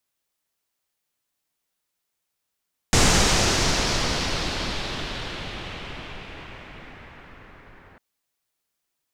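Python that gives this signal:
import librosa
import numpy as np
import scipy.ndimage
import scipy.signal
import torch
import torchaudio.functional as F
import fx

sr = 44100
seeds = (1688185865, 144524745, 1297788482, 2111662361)

y = fx.riser_noise(sr, seeds[0], length_s=5.05, colour='pink', kind='lowpass', start_hz=7100.0, end_hz=1700.0, q=1.8, swell_db=-33, law='exponential')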